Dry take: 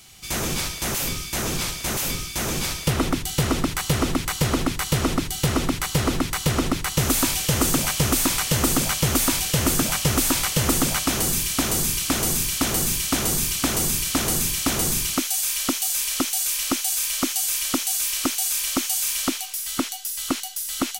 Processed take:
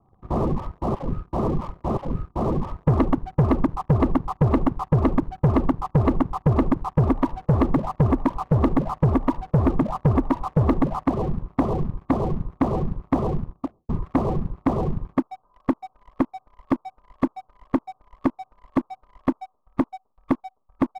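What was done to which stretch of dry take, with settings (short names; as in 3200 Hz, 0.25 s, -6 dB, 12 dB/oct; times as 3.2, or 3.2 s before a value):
13.29–13.89 studio fade out
whole clip: reverb removal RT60 1.9 s; steep low-pass 1200 Hz 96 dB/oct; sample leveller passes 2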